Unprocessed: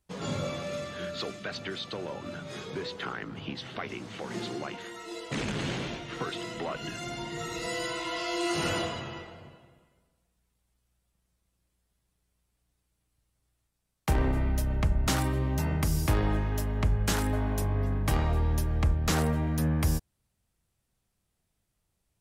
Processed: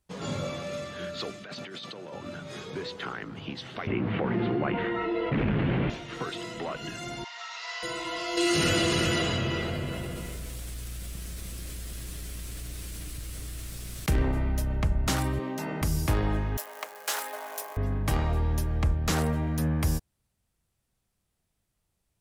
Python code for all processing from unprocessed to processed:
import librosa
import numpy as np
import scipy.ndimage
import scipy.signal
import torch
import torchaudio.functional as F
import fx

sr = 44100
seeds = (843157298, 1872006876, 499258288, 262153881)

y = fx.chain(x, sr, fx.highpass(hz=130.0, slope=24),
    fx.over_compress(threshold_db=-41.0, ratio=-1.0), at=(1.44, 2.13))
y = fx.chain(y, sr, fx.lowpass(hz=2600.0, slope=24),
    fx.low_shelf(hz=350.0, db=8.0),
    fx.env_flatten(amount_pct=70), at=(3.87, 5.9))
y = fx.chain(y, sr, fx.cvsd(bps=32000),
    fx.steep_highpass(hz=770.0, slope=36), at=(7.24, 7.83))
y = fx.chain(y, sr, fx.peak_eq(hz=870.0, db=-10.0, octaves=0.97),
    fx.echo_single(ms=370, db=-6.5),
    fx.env_flatten(amount_pct=70), at=(8.37, 14.23))
y = fx.chain(y, sr, fx.highpass(hz=200.0, slope=24),
    fx.high_shelf(hz=7800.0, db=-5.5),
    fx.env_flatten(amount_pct=100), at=(15.39, 15.82))
y = fx.chain(y, sr, fx.crossing_spikes(level_db=-33.0),
    fx.highpass(hz=540.0, slope=24),
    fx.peak_eq(hz=14000.0, db=4.0, octaves=0.33), at=(16.57, 17.77))